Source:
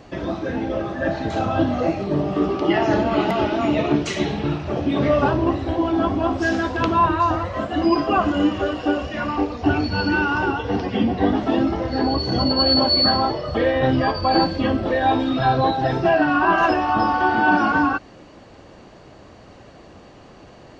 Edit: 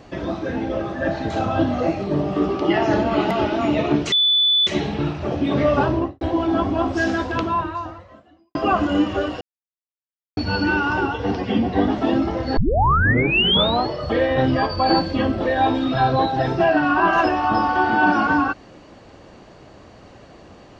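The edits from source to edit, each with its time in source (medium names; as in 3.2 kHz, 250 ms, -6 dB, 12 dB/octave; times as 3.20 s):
4.12 s: add tone 3.48 kHz -13.5 dBFS 0.55 s
5.38–5.66 s: studio fade out
6.68–8.00 s: fade out quadratic
8.86–9.82 s: mute
12.02 s: tape start 1.32 s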